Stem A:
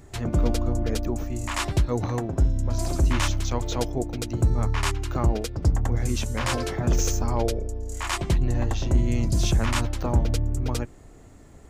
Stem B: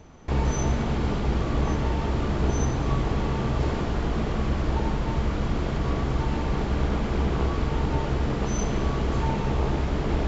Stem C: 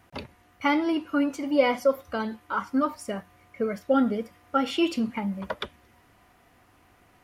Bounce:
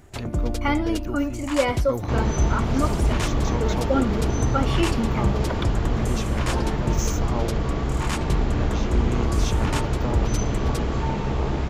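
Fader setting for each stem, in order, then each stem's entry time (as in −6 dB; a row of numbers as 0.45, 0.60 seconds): −2.5, +0.5, −0.5 decibels; 0.00, 1.80, 0.00 seconds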